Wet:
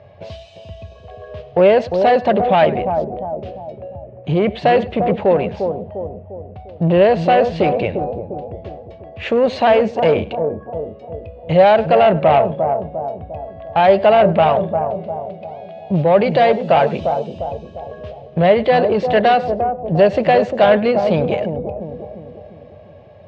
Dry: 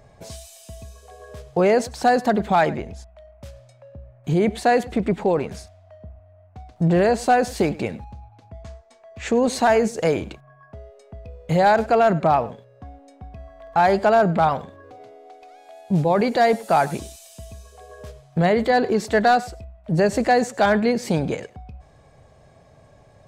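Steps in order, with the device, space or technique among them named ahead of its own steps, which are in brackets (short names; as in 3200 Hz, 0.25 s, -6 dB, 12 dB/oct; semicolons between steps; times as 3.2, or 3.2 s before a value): analogue delay pedal into a guitar amplifier (analogue delay 0.35 s, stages 2048, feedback 49%, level -7.5 dB; tube stage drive 13 dB, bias 0.3; speaker cabinet 82–3900 Hz, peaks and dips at 91 Hz +9 dB, 260 Hz -5 dB, 580 Hz +9 dB, 1400 Hz -3 dB, 2800 Hz +7 dB); gain +4.5 dB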